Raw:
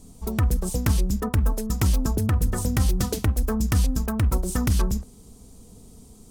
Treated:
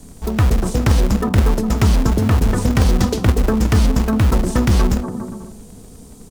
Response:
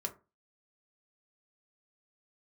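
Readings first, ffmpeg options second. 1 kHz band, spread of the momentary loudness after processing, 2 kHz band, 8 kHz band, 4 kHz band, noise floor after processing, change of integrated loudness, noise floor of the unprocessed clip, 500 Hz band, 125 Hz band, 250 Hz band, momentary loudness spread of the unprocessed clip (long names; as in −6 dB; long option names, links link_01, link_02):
+9.5 dB, 6 LU, +9.0 dB, +2.0 dB, +8.0 dB, −40 dBFS, +7.5 dB, −49 dBFS, +10.0 dB, +7.0 dB, +9.5 dB, 2 LU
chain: -filter_complex "[0:a]acrossover=split=140|1300|6600[link_01][link_02][link_03][link_04];[link_01]acrusher=bits=2:mode=log:mix=0:aa=0.000001[link_05];[link_02]aecho=1:1:240|408|525.6|607.9|665.5:0.631|0.398|0.251|0.158|0.1[link_06];[link_04]acompressor=threshold=-47dB:ratio=6[link_07];[link_05][link_06][link_03][link_07]amix=inputs=4:normalize=0,volume=7dB"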